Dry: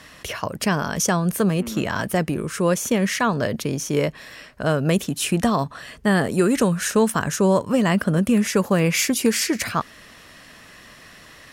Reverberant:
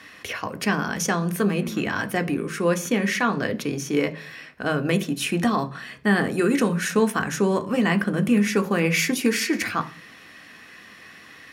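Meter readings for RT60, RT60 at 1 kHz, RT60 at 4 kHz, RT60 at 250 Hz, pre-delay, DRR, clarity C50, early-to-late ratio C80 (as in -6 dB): 0.45 s, 0.40 s, 0.50 s, 0.70 s, 3 ms, 7.0 dB, 18.5 dB, 23.0 dB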